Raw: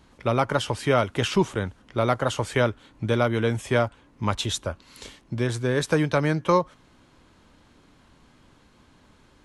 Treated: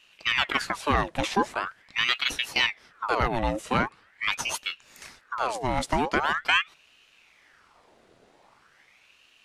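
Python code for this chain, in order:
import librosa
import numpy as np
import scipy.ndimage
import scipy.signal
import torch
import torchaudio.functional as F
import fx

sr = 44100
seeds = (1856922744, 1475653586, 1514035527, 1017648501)

y = fx.ring_lfo(x, sr, carrier_hz=1600.0, swing_pct=75, hz=0.43)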